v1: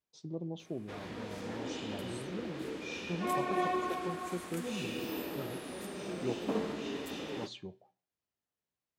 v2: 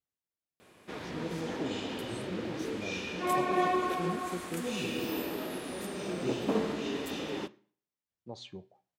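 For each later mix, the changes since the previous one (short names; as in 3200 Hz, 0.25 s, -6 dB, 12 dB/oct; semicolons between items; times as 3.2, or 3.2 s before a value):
first voice: entry +0.90 s; background +4.0 dB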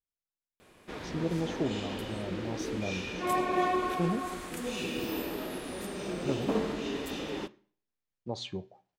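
first voice +7.5 dB; second voice -7.0 dB; master: remove HPF 86 Hz 12 dB/oct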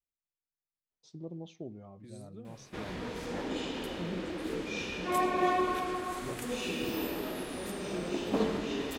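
first voice -10.5 dB; background: entry +1.85 s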